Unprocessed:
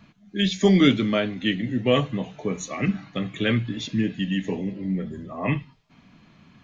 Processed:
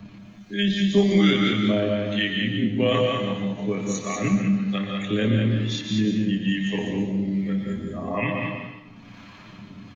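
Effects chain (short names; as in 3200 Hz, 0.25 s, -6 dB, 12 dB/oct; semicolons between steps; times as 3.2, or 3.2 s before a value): harmonic tremolo 1.7 Hz, depth 70%, crossover 660 Hz; granular stretch 1.5×, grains 59 ms; on a send: echo 0.195 s -5.5 dB; on the sum: plate-style reverb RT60 0.69 s, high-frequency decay 0.9×, pre-delay 0.11 s, DRR 5 dB; three-band squash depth 40%; gain +2.5 dB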